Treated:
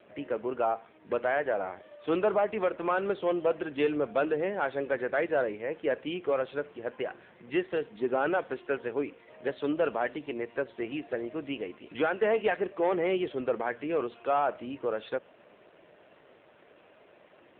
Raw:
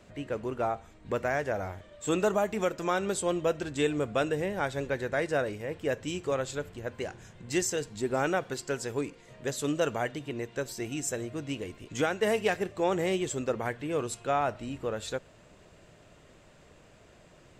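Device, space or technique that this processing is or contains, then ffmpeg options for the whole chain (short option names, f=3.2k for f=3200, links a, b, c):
telephone: -filter_complex "[0:a]asplit=3[a][b][c];[a]afade=t=out:st=1.92:d=0.02[d];[b]lowshelf=f=85:g=-3.5,afade=t=in:st=1.92:d=0.02,afade=t=out:st=3.62:d=0.02[e];[c]afade=t=in:st=3.62:d=0.02[f];[d][e][f]amix=inputs=3:normalize=0,highpass=300,lowpass=3.5k,asoftclip=type=tanh:threshold=-21dB,volume=4dB" -ar 8000 -c:a libopencore_amrnb -b:a 7400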